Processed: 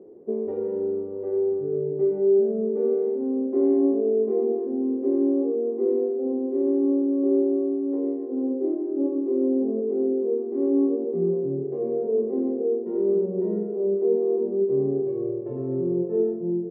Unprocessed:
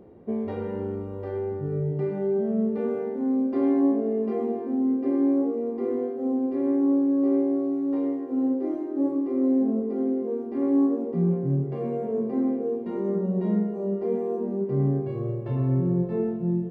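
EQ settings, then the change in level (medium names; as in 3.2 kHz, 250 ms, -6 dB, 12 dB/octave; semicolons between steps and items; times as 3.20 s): band-pass filter 400 Hz, Q 3.2; +7.0 dB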